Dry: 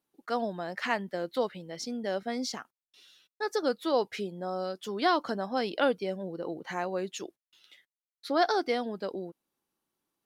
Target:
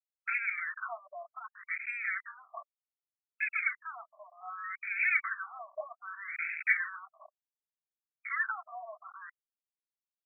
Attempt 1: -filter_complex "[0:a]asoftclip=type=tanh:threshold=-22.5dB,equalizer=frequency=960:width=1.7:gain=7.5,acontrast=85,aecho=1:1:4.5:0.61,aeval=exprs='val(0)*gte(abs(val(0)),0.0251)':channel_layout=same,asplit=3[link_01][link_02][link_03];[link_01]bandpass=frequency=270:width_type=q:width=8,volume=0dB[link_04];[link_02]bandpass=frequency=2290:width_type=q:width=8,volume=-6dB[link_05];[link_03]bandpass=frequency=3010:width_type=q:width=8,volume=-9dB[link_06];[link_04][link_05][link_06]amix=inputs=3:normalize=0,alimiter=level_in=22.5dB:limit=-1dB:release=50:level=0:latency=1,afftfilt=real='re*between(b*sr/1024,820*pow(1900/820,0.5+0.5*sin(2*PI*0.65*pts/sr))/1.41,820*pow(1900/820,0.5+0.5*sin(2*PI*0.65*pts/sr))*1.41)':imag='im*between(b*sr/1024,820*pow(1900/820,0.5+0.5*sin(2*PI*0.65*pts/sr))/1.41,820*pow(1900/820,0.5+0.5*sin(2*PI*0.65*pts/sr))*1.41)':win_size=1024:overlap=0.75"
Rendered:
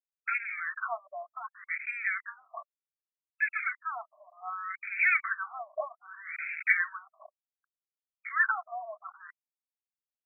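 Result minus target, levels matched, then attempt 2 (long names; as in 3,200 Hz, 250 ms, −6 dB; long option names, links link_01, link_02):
soft clipping: distortion −8 dB
-filter_complex "[0:a]asoftclip=type=tanh:threshold=-33.5dB,equalizer=frequency=960:width=1.7:gain=7.5,acontrast=85,aecho=1:1:4.5:0.61,aeval=exprs='val(0)*gte(abs(val(0)),0.0251)':channel_layout=same,asplit=3[link_01][link_02][link_03];[link_01]bandpass=frequency=270:width_type=q:width=8,volume=0dB[link_04];[link_02]bandpass=frequency=2290:width_type=q:width=8,volume=-6dB[link_05];[link_03]bandpass=frequency=3010:width_type=q:width=8,volume=-9dB[link_06];[link_04][link_05][link_06]amix=inputs=3:normalize=0,alimiter=level_in=22.5dB:limit=-1dB:release=50:level=0:latency=1,afftfilt=real='re*between(b*sr/1024,820*pow(1900/820,0.5+0.5*sin(2*PI*0.65*pts/sr))/1.41,820*pow(1900/820,0.5+0.5*sin(2*PI*0.65*pts/sr))*1.41)':imag='im*between(b*sr/1024,820*pow(1900/820,0.5+0.5*sin(2*PI*0.65*pts/sr))/1.41,820*pow(1900/820,0.5+0.5*sin(2*PI*0.65*pts/sr))*1.41)':win_size=1024:overlap=0.75"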